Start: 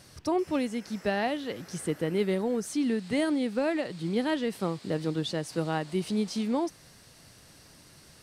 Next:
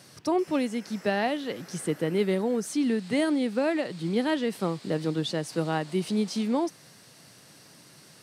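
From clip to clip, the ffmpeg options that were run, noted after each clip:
-af "highpass=f=120:w=0.5412,highpass=f=120:w=1.3066,volume=2dB"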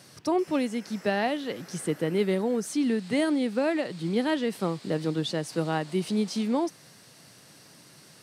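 -af anull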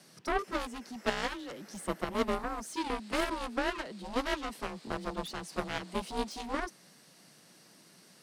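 -af "afreqshift=31,aeval=exprs='0.2*(cos(1*acos(clip(val(0)/0.2,-1,1)))-cos(1*PI/2))+0.0631*(cos(3*acos(clip(val(0)/0.2,-1,1)))-cos(3*PI/2))+0.0158*(cos(7*acos(clip(val(0)/0.2,-1,1)))-cos(7*PI/2))':c=same"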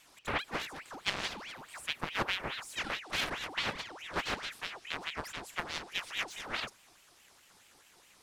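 -af "aeval=exprs='val(0)*sin(2*PI*1700*n/s+1700*0.7/4.7*sin(2*PI*4.7*n/s))':c=same"

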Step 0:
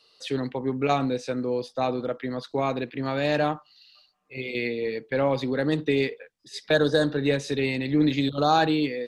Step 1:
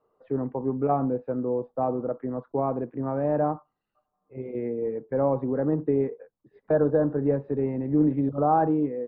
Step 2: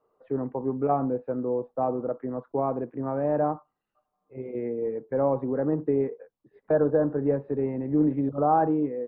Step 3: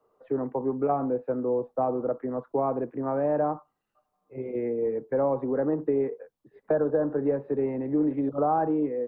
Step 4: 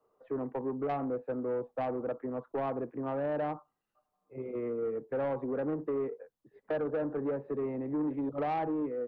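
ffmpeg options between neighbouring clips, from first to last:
-af "lowpass=f=1.1k:w=0.5412,lowpass=f=1.1k:w=1.3066"
-af "bass=f=250:g=-3,treble=f=4k:g=-7"
-filter_complex "[0:a]acrossover=split=110|250[a][b][c];[a]acompressor=threshold=-53dB:ratio=4[d];[b]acompressor=threshold=-44dB:ratio=4[e];[c]acompressor=threshold=-24dB:ratio=4[f];[d][e][f]amix=inputs=3:normalize=0,volume=2.5dB"
-af "asoftclip=type=tanh:threshold=-22dB,volume=-4.5dB"

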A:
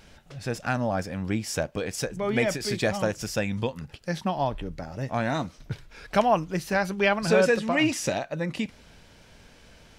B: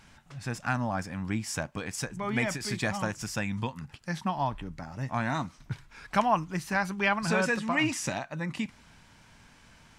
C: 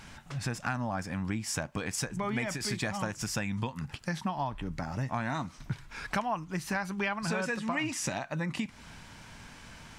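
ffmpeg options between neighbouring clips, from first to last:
-af "equalizer=f=125:t=o:w=1:g=5,equalizer=f=250:t=o:w=1:g=4,equalizer=f=500:t=o:w=1:g=-7,equalizer=f=1k:t=o:w=1:g=9,equalizer=f=2k:t=o:w=1:g=4,equalizer=f=8k:t=o:w=1:g=6,volume=-7dB"
-af "acompressor=threshold=-38dB:ratio=4,volume=7dB"

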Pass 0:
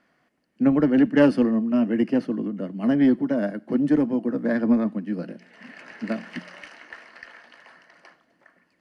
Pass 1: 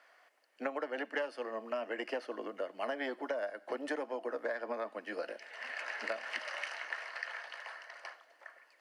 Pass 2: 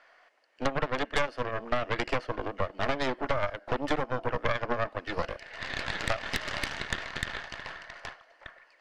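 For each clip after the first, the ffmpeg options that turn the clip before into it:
-af "highpass=f=540:w=0.5412,highpass=f=540:w=1.3066,acompressor=threshold=-37dB:ratio=16,volume=4dB"
-af "lowpass=5.7k,aeval=exprs='0.106*(cos(1*acos(clip(val(0)/0.106,-1,1)))-cos(1*PI/2))+0.0376*(cos(6*acos(clip(val(0)/0.106,-1,1)))-cos(6*PI/2))':c=same,volume=4.5dB"

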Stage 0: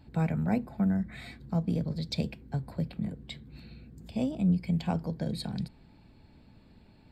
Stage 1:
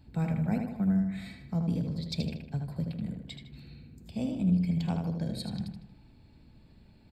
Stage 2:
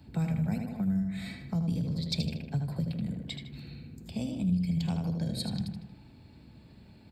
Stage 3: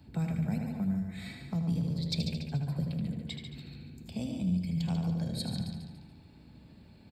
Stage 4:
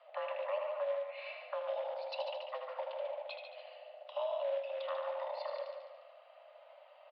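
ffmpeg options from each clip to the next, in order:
-filter_complex "[0:a]equalizer=f=890:w=0.3:g=-5.5,asplit=2[a][b];[b]adelay=78,lowpass=f=4.5k:p=1,volume=-4.5dB,asplit=2[c][d];[d]adelay=78,lowpass=f=4.5k:p=1,volume=0.5,asplit=2[e][f];[f]adelay=78,lowpass=f=4.5k:p=1,volume=0.5,asplit=2[g][h];[h]adelay=78,lowpass=f=4.5k:p=1,volume=0.5,asplit=2[i][j];[j]adelay=78,lowpass=f=4.5k:p=1,volume=0.5,asplit=2[k][l];[l]adelay=78,lowpass=f=4.5k:p=1,volume=0.5[m];[a][c][e][g][i][k][m]amix=inputs=7:normalize=0"
-filter_complex "[0:a]acrossover=split=140|3000[a][b][c];[b]acompressor=threshold=-39dB:ratio=6[d];[a][d][c]amix=inputs=3:normalize=0,highpass=70,volume=5dB"
-af "aecho=1:1:143|286|429|572|715:0.398|0.159|0.0637|0.0255|0.0102,volume=-2dB"
-af "acrusher=bits=6:mode=log:mix=0:aa=0.000001,highpass=f=230:t=q:w=0.5412,highpass=f=230:t=q:w=1.307,lowpass=f=3k:t=q:w=0.5176,lowpass=f=3k:t=q:w=0.7071,lowpass=f=3k:t=q:w=1.932,afreqshift=370,volume=2dB"

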